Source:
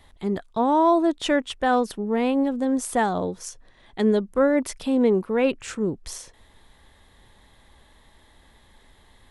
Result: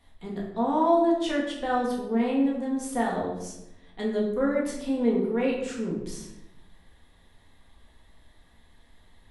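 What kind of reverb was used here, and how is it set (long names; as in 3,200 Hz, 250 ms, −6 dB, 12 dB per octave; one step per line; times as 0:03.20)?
rectangular room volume 270 cubic metres, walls mixed, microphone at 1.8 metres
level −10.5 dB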